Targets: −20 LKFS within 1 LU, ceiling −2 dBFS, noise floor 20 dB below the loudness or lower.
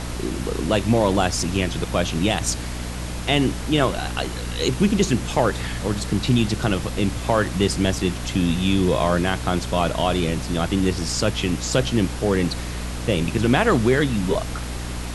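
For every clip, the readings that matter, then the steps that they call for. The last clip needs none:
mains hum 60 Hz; hum harmonics up to 300 Hz; level of the hum −28 dBFS; background noise floor −29 dBFS; target noise floor −42 dBFS; integrated loudness −22.0 LKFS; sample peak −3.5 dBFS; target loudness −20.0 LKFS
→ mains-hum notches 60/120/180/240/300 Hz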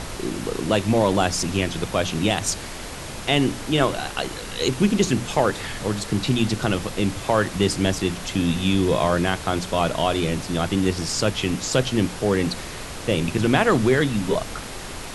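mains hum none found; background noise floor −34 dBFS; target noise floor −43 dBFS
→ noise reduction from a noise print 9 dB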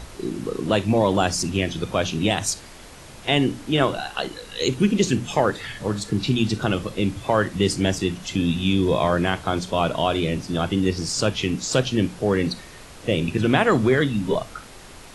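background noise floor −43 dBFS; integrated loudness −22.5 LKFS; sample peak −2.5 dBFS; target loudness −20.0 LKFS
→ level +2.5 dB
brickwall limiter −2 dBFS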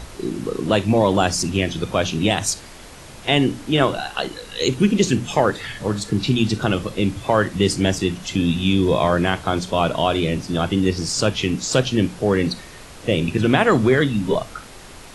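integrated loudness −20.0 LKFS; sample peak −2.0 dBFS; background noise floor −40 dBFS

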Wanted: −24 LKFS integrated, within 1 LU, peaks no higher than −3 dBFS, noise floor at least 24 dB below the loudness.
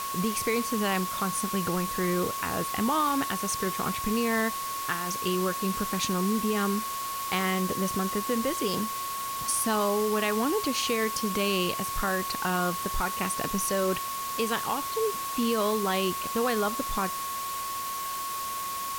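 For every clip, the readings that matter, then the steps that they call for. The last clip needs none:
interfering tone 1,100 Hz; level of the tone −32 dBFS; background noise floor −33 dBFS; target noise floor −52 dBFS; integrated loudness −28.0 LKFS; sample peak −13.5 dBFS; target loudness −24.0 LKFS
→ notch filter 1,100 Hz, Q 30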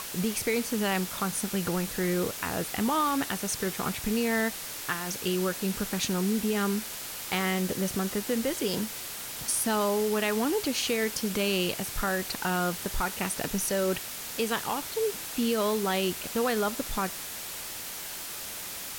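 interfering tone none found; background noise floor −38 dBFS; target noise floor −53 dBFS
→ broadband denoise 15 dB, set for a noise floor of −38 dBFS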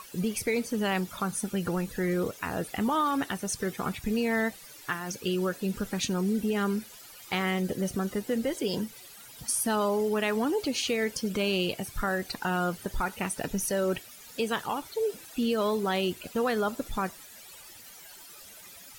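background noise floor −49 dBFS; target noise floor −54 dBFS
→ broadband denoise 6 dB, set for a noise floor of −49 dBFS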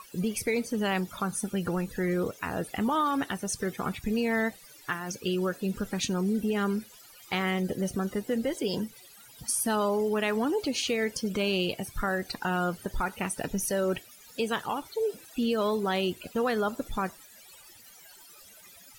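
background noise floor −53 dBFS; target noise floor −54 dBFS
→ broadband denoise 6 dB, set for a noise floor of −53 dBFS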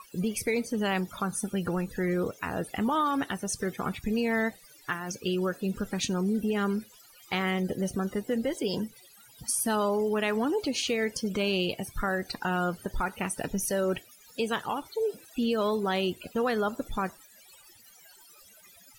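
background noise floor −56 dBFS; integrated loudness −30.0 LKFS; sample peak −15.5 dBFS; target loudness −24.0 LKFS
→ level +6 dB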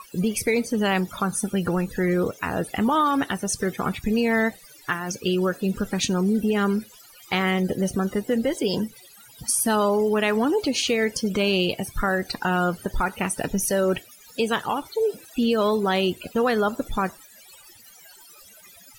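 integrated loudness −24.0 LKFS; sample peak −9.5 dBFS; background noise floor −50 dBFS

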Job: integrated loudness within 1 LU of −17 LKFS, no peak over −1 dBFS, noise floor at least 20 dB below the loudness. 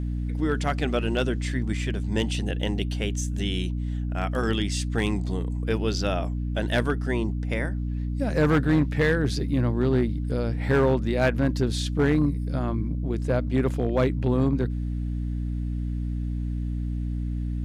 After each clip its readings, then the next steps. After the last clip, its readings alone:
share of clipped samples 0.5%; peaks flattened at −14.5 dBFS; mains hum 60 Hz; hum harmonics up to 300 Hz; level of the hum −26 dBFS; integrated loudness −26.0 LKFS; sample peak −14.5 dBFS; target loudness −17.0 LKFS
→ clipped peaks rebuilt −14.5 dBFS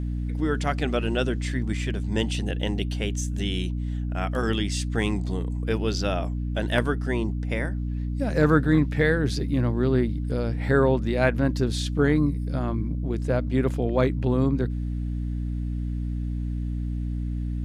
share of clipped samples 0.0%; mains hum 60 Hz; hum harmonics up to 300 Hz; level of the hum −26 dBFS
→ hum removal 60 Hz, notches 5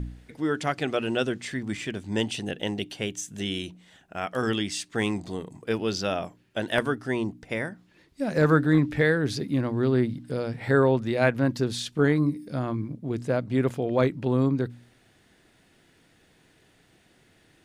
mains hum none found; integrated loudness −27.0 LKFS; sample peak −6.5 dBFS; target loudness −17.0 LKFS
→ level +10 dB
brickwall limiter −1 dBFS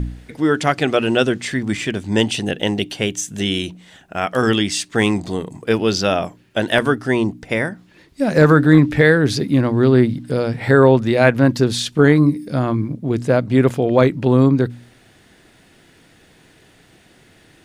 integrated loudness −17.0 LKFS; sample peak −1.0 dBFS; background noise floor −52 dBFS

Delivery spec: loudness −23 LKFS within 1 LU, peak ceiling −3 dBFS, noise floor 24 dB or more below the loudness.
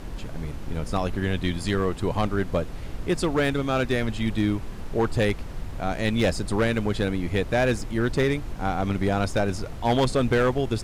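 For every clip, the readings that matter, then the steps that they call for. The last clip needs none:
share of clipped samples 1.6%; peaks flattened at −15.5 dBFS; background noise floor −35 dBFS; target noise floor −50 dBFS; integrated loudness −25.5 LKFS; sample peak −15.5 dBFS; target loudness −23.0 LKFS
→ clipped peaks rebuilt −15.5 dBFS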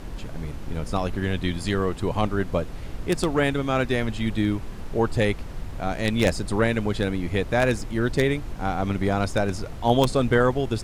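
share of clipped samples 0.0%; background noise floor −35 dBFS; target noise floor −49 dBFS
→ noise reduction from a noise print 14 dB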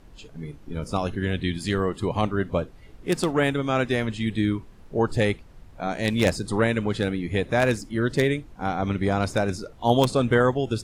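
background noise floor −48 dBFS; target noise floor −49 dBFS
→ noise reduction from a noise print 6 dB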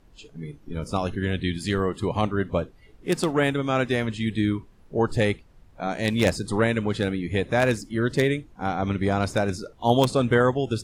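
background noise floor −54 dBFS; integrated loudness −25.0 LKFS; sample peak −6.5 dBFS; target loudness −23.0 LKFS
→ level +2 dB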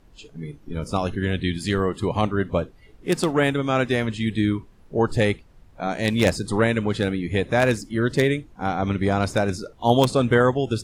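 integrated loudness −23.0 LKFS; sample peak −4.5 dBFS; background noise floor −52 dBFS

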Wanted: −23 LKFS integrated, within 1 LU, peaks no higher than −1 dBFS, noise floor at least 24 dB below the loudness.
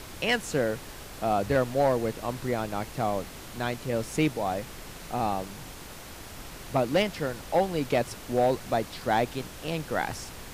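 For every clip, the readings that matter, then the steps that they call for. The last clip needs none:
share of clipped samples 0.3%; peaks flattened at −16.0 dBFS; background noise floor −43 dBFS; target noise floor −53 dBFS; integrated loudness −29.0 LKFS; sample peak −16.0 dBFS; target loudness −23.0 LKFS
→ clipped peaks rebuilt −16 dBFS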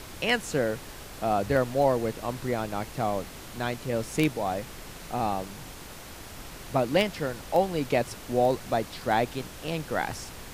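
share of clipped samples 0.0%; background noise floor −43 dBFS; target noise floor −53 dBFS
→ noise reduction from a noise print 10 dB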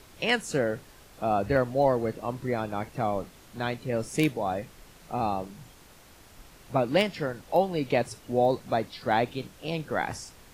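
background noise floor −53 dBFS; integrated loudness −28.5 LKFS; sample peak −8.0 dBFS; target loudness −23.0 LKFS
→ level +5.5 dB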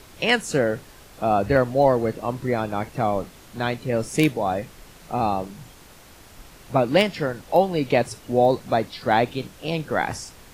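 integrated loudness −23.0 LKFS; sample peak −2.5 dBFS; background noise floor −48 dBFS

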